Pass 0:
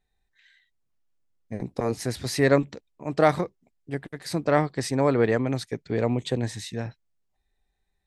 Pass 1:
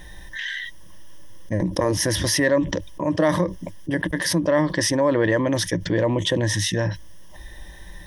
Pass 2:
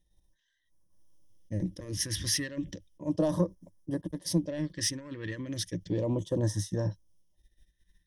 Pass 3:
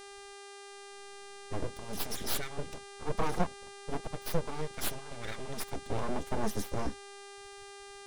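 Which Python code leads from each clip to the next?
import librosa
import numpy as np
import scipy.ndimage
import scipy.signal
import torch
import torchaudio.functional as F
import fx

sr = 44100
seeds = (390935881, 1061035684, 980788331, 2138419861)

y1 = fx.ripple_eq(x, sr, per_octave=1.2, db=14)
y1 = fx.env_flatten(y1, sr, amount_pct=70)
y1 = F.gain(torch.from_numpy(y1), -5.5).numpy()
y2 = fx.fold_sine(y1, sr, drive_db=3, ceiling_db=-6.5)
y2 = fx.phaser_stages(y2, sr, stages=2, low_hz=710.0, high_hz=2300.0, hz=0.34, feedback_pct=25)
y2 = fx.upward_expand(y2, sr, threshold_db=-34.0, expansion=2.5)
y2 = F.gain(torch.from_numpy(y2), -9.0).numpy()
y3 = fx.spec_quant(y2, sr, step_db=30)
y3 = np.abs(y3)
y3 = fx.dmg_buzz(y3, sr, base_hz=400.0, harmonics=26, level_db=-49.0, tilt_db=-4, odd_only=False)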